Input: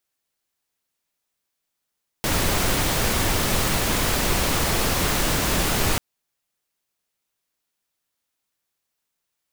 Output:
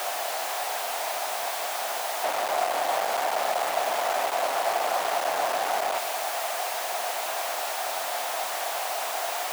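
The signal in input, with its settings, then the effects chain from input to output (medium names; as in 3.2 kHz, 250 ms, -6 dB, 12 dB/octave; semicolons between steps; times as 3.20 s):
noise pink, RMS -21.5 dBFS 3.74 s
one-bit comparator; resonant high-pass 700 Hz, resonance Q 5.3; treble shelf 3.1 kHz -10 dB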